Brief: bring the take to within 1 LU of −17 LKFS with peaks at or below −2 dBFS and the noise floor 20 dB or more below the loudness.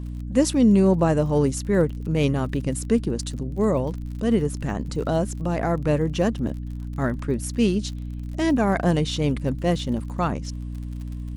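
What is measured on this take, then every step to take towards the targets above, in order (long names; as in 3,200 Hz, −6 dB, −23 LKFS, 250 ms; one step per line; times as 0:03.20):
crackle rate 41 per second; mains hum 60 Hz; hum harmonics up to 300 Hz; level of the hum −29 dBFS; integrated loudness −23.5 LKFS; sample peak −6.5 dBFS; target loudness −17.0 LKFS
→ click removal
mains-hum notches 60/120/180/240/300 Hz
level +6.5 dB
brickwall limiter −2 dBFS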